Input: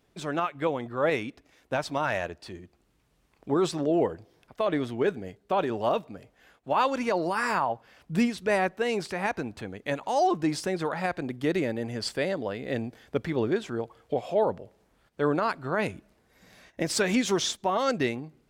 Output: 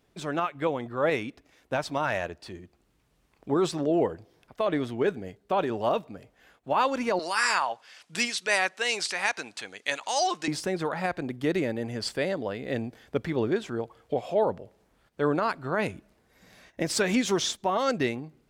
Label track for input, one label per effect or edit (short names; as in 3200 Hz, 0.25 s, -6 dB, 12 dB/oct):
7.190000	10.480000	weighting filter ITU-R 468